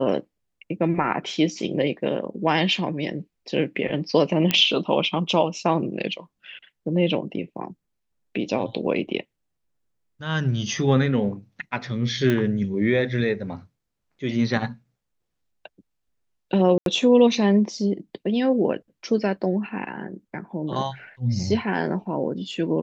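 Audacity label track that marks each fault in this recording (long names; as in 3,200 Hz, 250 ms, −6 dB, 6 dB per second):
4.510000	4.510000	click −6 dBFS
12.300000	12.300000	click −11 dBFS
16.780000	16.860000	drop-out 82 ms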